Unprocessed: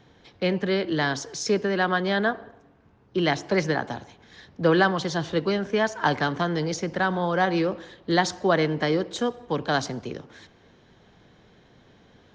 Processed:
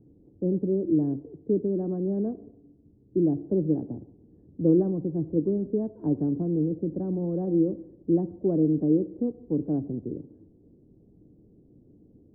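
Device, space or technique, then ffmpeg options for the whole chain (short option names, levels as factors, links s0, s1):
under water: -af "lowpass=f=410:w=0.5412,lowpass=f=410:w=1.3066,equalizer=f=300:t=o:w=0.28:g=8"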